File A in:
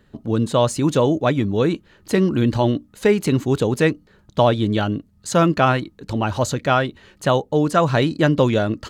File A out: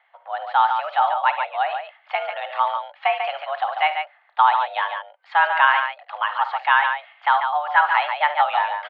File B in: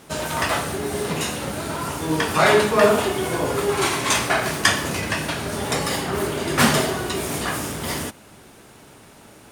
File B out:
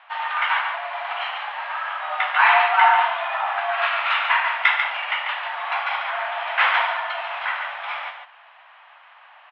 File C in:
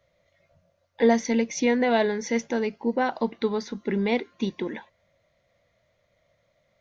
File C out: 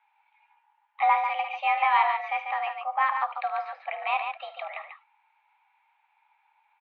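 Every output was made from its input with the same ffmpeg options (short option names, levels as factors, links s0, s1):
-af "aecho=1:1:52|75|143:0.178|0.168|0.473,highpass=f=490:t=q:w=0.5412,highpass=f=490:t=q:w=1.307,lowpass=f=2800:t=q:w=0.5176,lowpass=f=2800:t=q:w=0.7071,lowpass=f=2800:t=q:w=1.932,afreqshift=290,volume=1.19"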